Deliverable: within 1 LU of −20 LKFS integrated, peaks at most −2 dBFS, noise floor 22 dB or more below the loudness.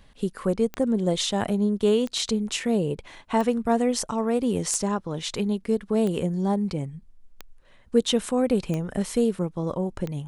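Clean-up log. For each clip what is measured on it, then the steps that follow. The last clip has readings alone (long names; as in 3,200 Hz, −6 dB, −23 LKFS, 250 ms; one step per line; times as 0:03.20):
number of clicks 8; integrated loudness −25.5 LKFS; sample peak −8.5 dBFS; target loudness −20.0 LKFS
→ click removal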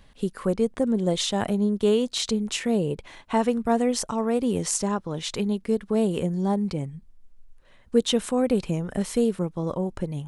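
number of clicks 0; integrated loudness −25.5 LKFS; sample peak −8.5 dBFS; target loudness −20.0 LKFS
→ level +5.5 dB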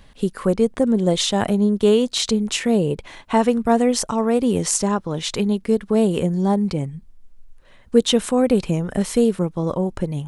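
integrated loudness −20.0 LKFS; sample peak −3.0 dBFS; background noise floor −48 dBFS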